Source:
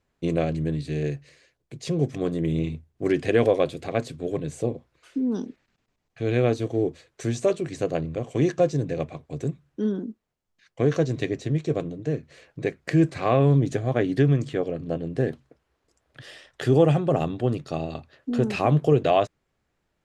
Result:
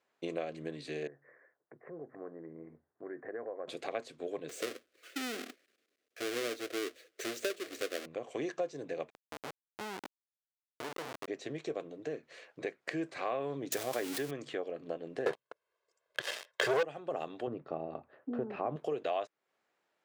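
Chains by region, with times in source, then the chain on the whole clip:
1.07–3.68 steep low-pass 1900 Hz 72 dB/oct + compressor 2:1, threshold -45 dBFS
4.49–8.06 half-waves squared off + fixed phaser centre 370 Hz, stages 4
9.1–11.28 echo 0.243 s -14.5 dB + compressor 2:1, threshold -24 dBFS + Schmitt trigger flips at -27 dBFS
13.72–14.31 switching spikes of -18.5 dBFS + fast leveller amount 70%
15.26–16.83 comb 1.9 ms, depth 95% + sample leveller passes 5
17.47–18.76 LPF 1300 Hz + low shelf 230 Hz +11 dB
whole clip: HPF 470 Hz 12 dB/oct; high shelf 5900 Hz -7.5 dB; compressor 2.5:1, threshold -37 dBFS

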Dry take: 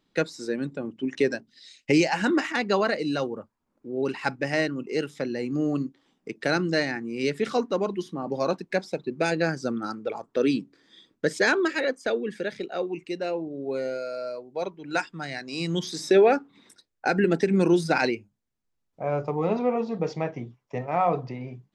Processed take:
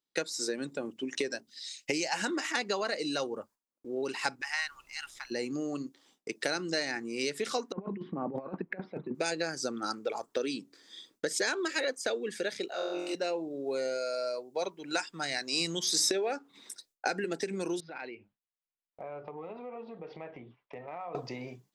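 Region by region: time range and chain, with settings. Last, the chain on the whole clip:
4.4–5.3 steep high-pass 830 Hz 72 dB/oct + high shelf 2600 Hz -11 dB + added noise brown -58 dBFS
7.72–9.15 inverse Chebyshev low-pass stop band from 6600 Hz, stop band 60 dB + negative-ratio compressor -32 dBFS, ratio -0.5 + bell 170 Hz +9 dB 1.4 oct
12.7–13.15 HPF 240 Hz + compressor 3:1, threshold -38 dBFS + flutter echo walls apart 3.9 m, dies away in 1.2 s
17.8–21.15 inverse Chebyshev low-pass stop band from 7400 Hz, stop band 50 dB + compressor, threshold -38 dBFS + mismatched tape noise reduction encoder only
whole clip: compressor 10:1, threshold -27 dBFS; tone controls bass -11 dB, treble +12 dB; gate with hold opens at -52 dBFS

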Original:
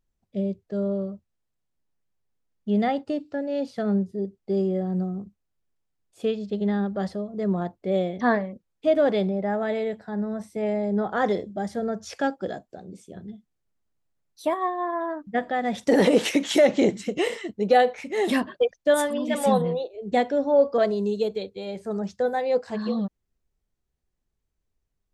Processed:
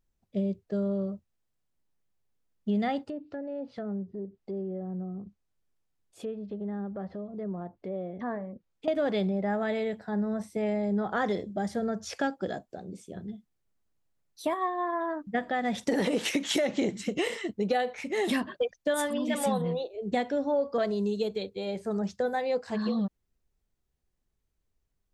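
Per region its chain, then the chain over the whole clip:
3.03–8.88 treble ducked by the level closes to 1400 Hz, closed at -24 dBFS + compressor 2:1, threshold -40 dBFS
whole clip: dynamic EQ 530 Hz, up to -4 dB, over -30 dBFS, Q 0.84; compressor 5:1, threshold -24 dBFS

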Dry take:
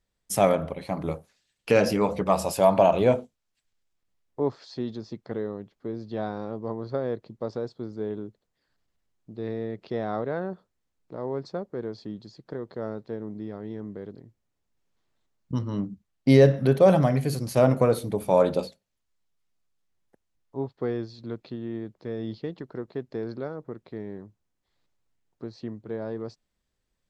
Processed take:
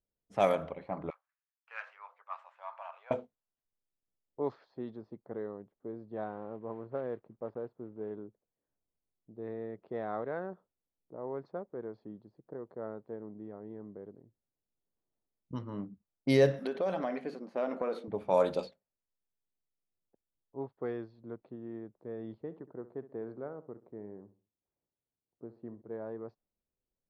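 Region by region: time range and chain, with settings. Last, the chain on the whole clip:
1.1–3.11 median filter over 9 samples + inverse Chebyshev high-pass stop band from 280 Hz, stop band 70 dB
6.24–8.11 block floating point 5-bit + air absorption 290 m
16.59–18.08 brick-wall FIR high-pass 170 Hz + compressor 4:1, threshold -22 dBFS
22.34–25.82 HPF 41 Hz + high shelf 2900 Hz -9 dB + feedback echo 67 ms, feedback 37%, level -15 dB
whole clip: low-pass opened by the level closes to 560 Hz, open at -17 dBFS; low shelf 270 Hz -10 dB; gain -4.5 dB

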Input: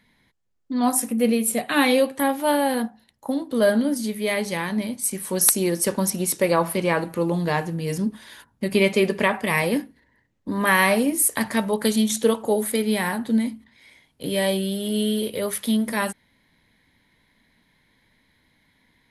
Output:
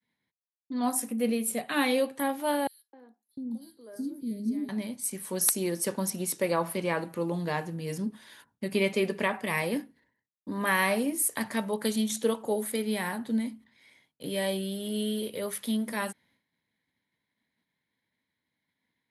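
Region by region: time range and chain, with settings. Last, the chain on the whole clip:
2.67–4.69 EQ curve 330 Hz 0 dB, 570 Hz -20 dB, 3000 Hz -25 dB, 4600 Hz -12 dB, 6600 Hz -17 dB, 12000 Hz -11 dB + three bands offset in time highs, mids, lows 0.26/0.7 s, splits 460/2500 Hz
whole clip: HPF 110 Hz; expander -55 dBFS; gain -7.5 dB

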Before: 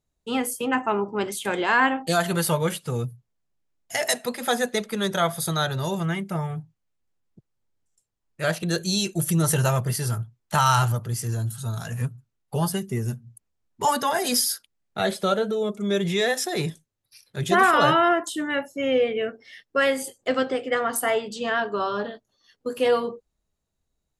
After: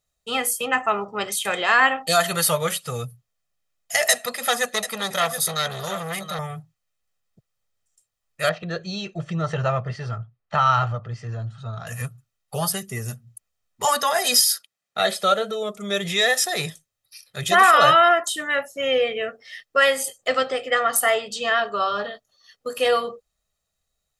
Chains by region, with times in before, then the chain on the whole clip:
4.1–6.39 echo 0.726 s -11.5 dB + core saturation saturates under 1500 Hz
8.49–11.87 Gaussian blur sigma 2.1 samples + high shelf 2100 Hz -8.5 dB
13.87–15.77 HPF 150 Hz + high shelf 10000 Hz -4 dB
whole clip: tilt shelf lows -6 dB, about 640 Hz; comb 1.6 ms, depth 52%

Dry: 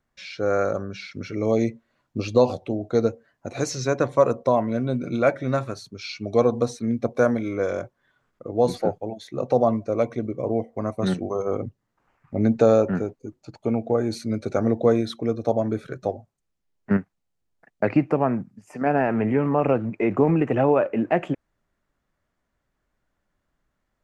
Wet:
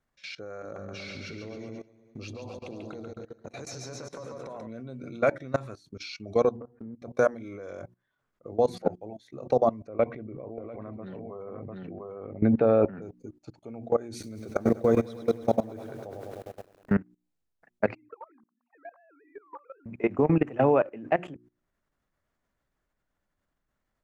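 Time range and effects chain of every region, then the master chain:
0.62–4.67 compressor 5:1, threshold -33 dBFS + bouncing-ball echo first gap 0.14 s, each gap 0.9×, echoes 5
6.56–7 steep low-pass 1500 Hz + compressor 8:1, threshold -32 dBFS
9.87–13.02 LPF 2800 Hz 24 dB/oct + echo 0.696 s -4.5 dB + sustainer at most 56 dB/s
14.1–16.92 notch 4200 Hz, Q 9.3 + lo-fi delay 0.103 s, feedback 80%, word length 8-bit, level -8 dB
17.95–19.86 sine-wave speech + band-pass 1100 Hz, Q 4.3 + compressor 12:1, threshold -37 dBFS
whole clip: notches 60/120/180/240/300/360 Hz; level quantiser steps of 20 dB

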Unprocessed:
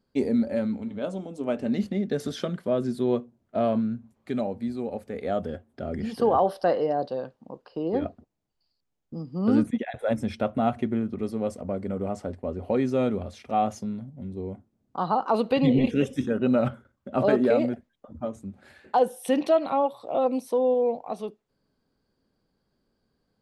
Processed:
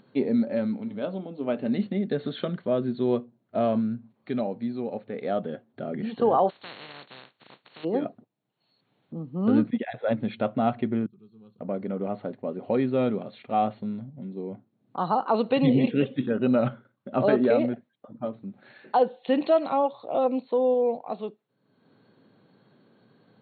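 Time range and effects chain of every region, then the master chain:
6.49–7.83 spectral contrast lowered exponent 0.16 + compressor 2:1, threshold -51 dBFS
11.06–11.61 passive tone stack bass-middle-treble 6-0-2 + fixed phaser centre 400 Hz, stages 8
whole clip: upward compressor, threshold -44 dBFS; FFT band-pass 100–4400 Hz

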